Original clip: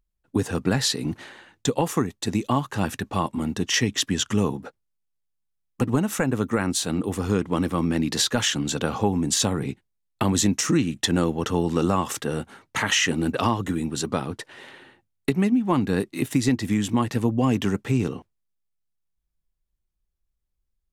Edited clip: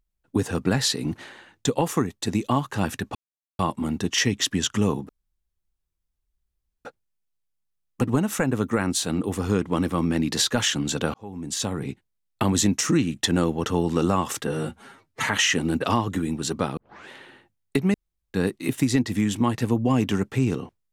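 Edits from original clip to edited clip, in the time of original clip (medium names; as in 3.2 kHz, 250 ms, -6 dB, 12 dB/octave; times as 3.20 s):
3.15 s: insert silence 0.44 s
4.65 s: insert room tone 1.76 s
8.94–10.23 s: fade in equal-power
12.27–12.81 s: stretch 1.5×
14.30 s: tape start 0.32 s
15.47–15.87 s: room tone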